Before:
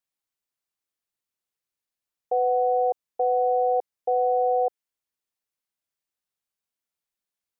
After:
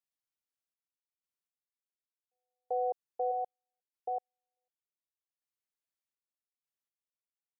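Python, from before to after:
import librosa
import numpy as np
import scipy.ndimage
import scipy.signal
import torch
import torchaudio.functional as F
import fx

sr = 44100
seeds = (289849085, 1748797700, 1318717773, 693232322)

y = fx.notch(x, sr, hz=510.0, q=12.0, at=(3.31, 4.57))
y = fx.step_gate(y, sr, bpm=61, pattern='xxx..x.....', floor_db=-60.0, edge_ms=4.5)
y = F.gain(torch.from_numpy(y), -9.0).numpy()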